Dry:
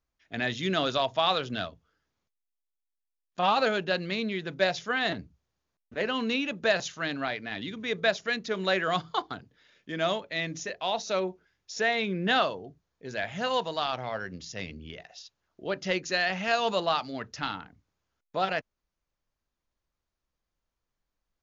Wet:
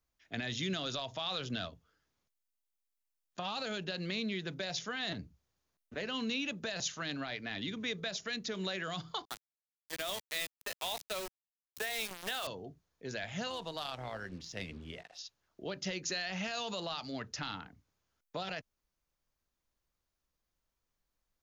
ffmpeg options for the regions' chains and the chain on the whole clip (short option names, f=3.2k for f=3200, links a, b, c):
-filter_complex "[0:a]asettb=1/sr,asplit=3[a][b][c];[a]atrim=end=9.254[d];[b]atrim=start=9.25:end=12.47,asetpts=PTS-STARTPTS,afade=t=in:d=0.004:c=qsin,afade=t=out:st=3.216:d=0.004:c=qsin,highpass=450,lowpass=4.6k,aeval=exprs='val(0)*gte(abs(val(0)),0.0211)':c=same[e];[c]atrim=start=12.466[f];[d][e]acrossfade=d=0.004:c1=hsin:c2=qsin[g];[g][f]acrossfade=d=0.004:c1=qsin:c2=hsin,asettb=1/sr,asplit=3[h][i][j];[h]atrim=end=13.504[k];[i]atrim=start=13.5:end=15.19,asetpts=PTS-STARTPTS,afade=t=in:d=0.004:c=qsin,afade=t=out:st=1.686:d=0.004:c=qsin,acrusher=bits=8:mix=0:aa=0.5,adynamicsmooth=sensitivity=3:basefreq=5.4k,tremolo=f=170:d=0.462[l];[j]atrim=start=15.186[m];[k][l]acrossfade=d=0.004:c1=hsin:c2=qsin[n];[n][m]acrossfade=d=0.004:c1=qsin:c2=hsin,highshelf=f=5.6k:g=6,alimiter=limit=-20.5dB:level=0:latency=1:release=45,acrossover=split=200|3000[o][p][q];[p]acompressor=threshold=-37dB:ratio=6[r];[o][r][q]amix=inputs=3:normalize=0,volume=-1.5dB"